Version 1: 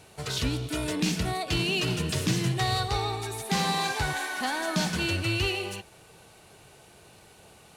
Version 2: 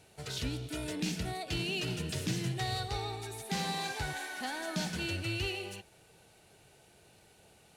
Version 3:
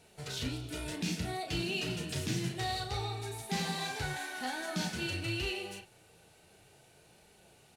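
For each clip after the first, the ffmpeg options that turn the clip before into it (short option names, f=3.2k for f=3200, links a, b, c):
-af "equalizer=f=1.1k:w=4.5:g=-7.5,volume=-7.5dB"
-filter_complex "[0:a]flanger=delay=4.2:depth=8.3:regen=-49:speed=0.55:shape=triangular,asplit=2[a][b];[b]adelay=35,volume=-6dB[c];[a][c]amix=inputs=2:normalize=0,volume=3dB"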